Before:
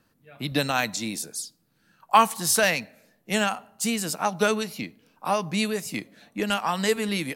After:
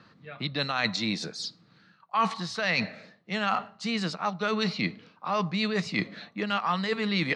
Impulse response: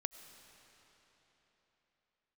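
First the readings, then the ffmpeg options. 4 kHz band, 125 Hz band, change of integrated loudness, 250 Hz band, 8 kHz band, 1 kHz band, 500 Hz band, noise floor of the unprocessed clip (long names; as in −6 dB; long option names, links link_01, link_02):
−1.0 dB, +0.5 dB, −4.0 dB, −1.5 dB, −16.5 dB, −5.0 dB, −5.5 dB, −68 dBFS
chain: -af "areverse,acompressor=threshold=-35dB:ratio=12,areverse,highpass=100,equalizer=frequency=110:width_type=q:width=4:gain=4,equalizer=frequency=180:width_type=q:width=4:gain=6,equalizer=frequency=270:width_type=q:width=4:gain=-3,equalizer=frequency=1200:width_type=q:width=4:gain=8,equalizer=frequency=2000:width_type=q:width=4:gain=5,equalizer=frequency=4100:width_type=q:width=4:gain=7,lowpass=frequency=4900:width=0.5412,lowpass=frequency=4900:width=1.3066,volume=8.5dB"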